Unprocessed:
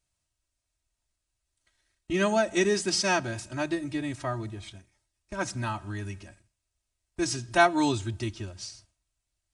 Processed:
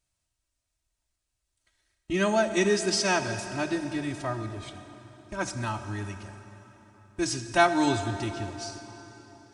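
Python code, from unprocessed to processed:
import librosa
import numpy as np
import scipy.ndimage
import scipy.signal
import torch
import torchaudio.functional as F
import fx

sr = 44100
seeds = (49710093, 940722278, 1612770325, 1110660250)

y = fx.rev_plate(x, sr, seeds[0], rt60_s=4.0, hf_ratio=0.8, predelay_ms=0, drr_db=8.5)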